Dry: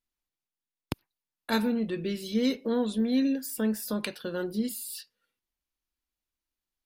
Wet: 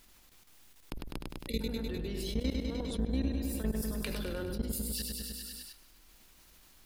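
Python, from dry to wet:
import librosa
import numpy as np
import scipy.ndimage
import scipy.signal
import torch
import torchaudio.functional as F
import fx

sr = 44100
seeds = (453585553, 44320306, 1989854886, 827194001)

y = fx.octave_divider(x, sr, octaves=2, level_db=4.0)
y = fx.peak_eq(y, sr, hz=97.0, db=-4.5, octaves=1.8)
y = y + 10.0 ** (-13.0 / 20.0) * np.pad(y, (int(235 * sr / 1000.0), 0))[:len(y)]
y = fx.level_steps(y, sr, step_db=23)
y = fx.spec_erase(y, sr, start_s=1.2, length_s=0.41, low_hz=580.0, high_hz=1900.0)
y = fx.echo_feedback(y, sr, ms=101, feedback_pct=60, wet_db=-9.0)
y = fx.env_flatten(y, sr, amount_pct=70)
y = y * librosa.db_to_amplitude(-8.0)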